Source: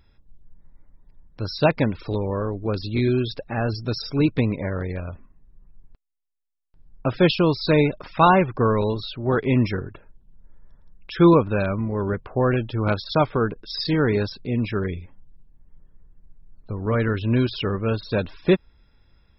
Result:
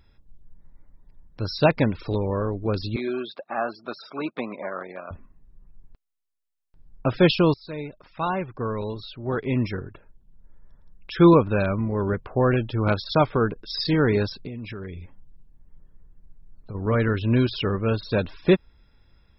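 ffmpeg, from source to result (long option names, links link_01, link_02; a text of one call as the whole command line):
ffmpeg -i in.wav -filter_complex "[0:a]asettb=1/sr,asplit=3[link_01][link_02][link_03];[link_01]atrim=end=2.964[link_04];[link_02]atrim=start=2.96:end=5.11,asetpts=PTS-STARTPTS,afade=type=in:duration=0.004:curve=qsin,afade=type=out:start_time=2.146:duration=0.004:curve=qsin,highpass=frequency=270:width=0.5412,highpass=frequency=270:width=1.3066,equalizer=frequency=290:width_type=q:width=4:gain=-10,equalizer=frequency=450:width_type=q:width=4:gain=-9,equalizer=frequency=690:width_type=q:width=4:gain=4,equalizer=frequency=1200:width_type=q:width=4:gain=8,equalizer=frequency=1900:width_type=q:width=4:gain=-6,equalizer=frequency=2800:width_type=q:width=4:gain=-6,lowpass=frequency=3400:width=0.5412,lowpass=frequency=3400:width=1.3066[link_05];[link_03]atrim=start=5.106[link_06];[link_04][link_05]acrossfade=duration=0.004:curve1=hsin:curve2=qsin[link_07];[link_07][link_06]acrossfade=duration=0.004:curve1=qsin:curve2=hsin,asettb=1/sr,asplit=3[link_08][link_09][link_10];[link_08]atrim=end=14.474[link_11];[link_09]atrim=start=14.47:end=16.75,asetpts=PTS-STARTPTS,afade=type=in:duration=0.004:curve=qsin,afade=type=out:start_time=2.276:duration=0.004:curve=qsin,acompressor=threshold=-32dB:ratio=6:attack=3.2:release=140:knee=1:detection=peak[link_12];[link_10]atrim=start=16.746[link_13];[link_11][link_12]acrossfade=duration=0.004:curve1=hsin:curve2=qsin[link_14];[link_14][link_13]acrossfade=duration=0.004:curve1=qsin:curve2=hsin,asplit=2[link_15][link_16];[link_15]atrim=end=7.54,asetpts=PTS-STARTPTS,afade=type=out:start_time=7.536:duration=0.004:curve=hsin:silence=0.105925[link_17];[link_16]atrim=start=7.54,asetpts=PTS-STARTPTS,afade=type=in:duration=3.72:silence=0.105925[link_18];[link_17][link_18]concat=n=2:v=0:a=1" out.wav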